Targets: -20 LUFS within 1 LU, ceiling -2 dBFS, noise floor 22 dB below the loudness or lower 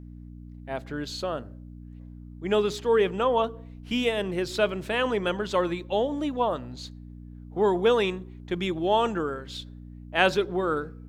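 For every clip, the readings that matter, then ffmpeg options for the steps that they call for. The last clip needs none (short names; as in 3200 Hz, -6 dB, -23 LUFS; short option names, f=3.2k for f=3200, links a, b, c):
hum 60 Hz; harmonics up to 300 Hz; hum level -41 dBFS; loudness -26.5 LUFS; peak -5.5 dBFS; loudness target -20.0 LUFS
-> -af "bandreject=f=60:t=h:w=4,bandreject=f=120:t=h:w=4,bandreject=f=180:t=h:w=4,bandreject=f=240:t=h:w=4,bandreject=f=300:t=h:w=4"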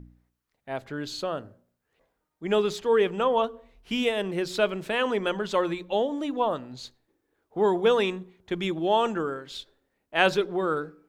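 hum none; loudness -26.5 LUFS; peak -5.5 dBFS; loudness target -20.0 LUFS
-> -af "volume=6.5dB,alimiter=limit=-2dB:level=0:latency=1"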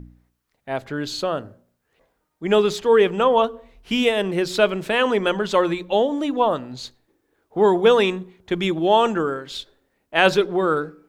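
loudness -20.5 LUFS; peak -2.0 dBFS; noise floor -73 dBFS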